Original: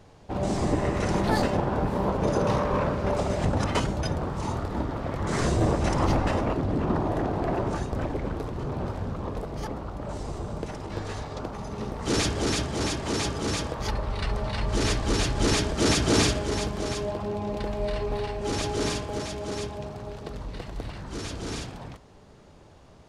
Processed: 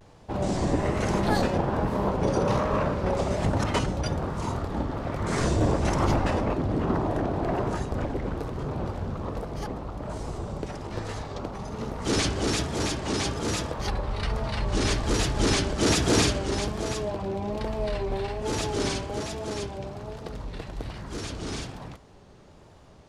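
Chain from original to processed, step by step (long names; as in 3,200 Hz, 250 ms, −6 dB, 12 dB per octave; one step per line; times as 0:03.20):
pitch vibrato 1.2 Hz 97 cents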